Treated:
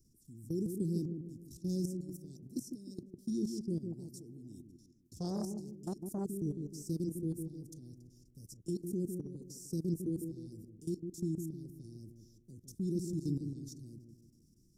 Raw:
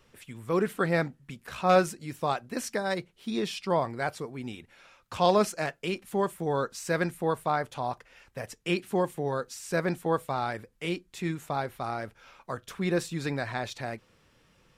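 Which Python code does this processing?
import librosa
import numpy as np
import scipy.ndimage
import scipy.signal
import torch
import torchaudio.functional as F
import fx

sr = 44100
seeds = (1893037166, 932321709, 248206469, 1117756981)

y = scipy.signal.sosfilt(scipy.signal.cheby1(4, 1.0, [340.0, 5400.0], 'bandstop', fs=sr, output='sos'), x)
y = fx.high_shelf(y, sr, hz=10000.0, db=3.5)
y = fx.level_steps(y, sr, step_db=17)
y = fx.echo_wet_lowpass(y, sr, ms=153, feedback_pct=45, hz=860.0, wet_db=-5.5)
y = fx.transformer_sat(y, sr, knee_hz=460.0, at=(3.92, 6.25))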